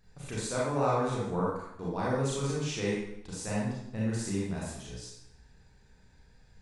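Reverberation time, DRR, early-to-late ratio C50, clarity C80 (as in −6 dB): 0.80 s, −6.5 dB, −1.0 dB, 3.0 dB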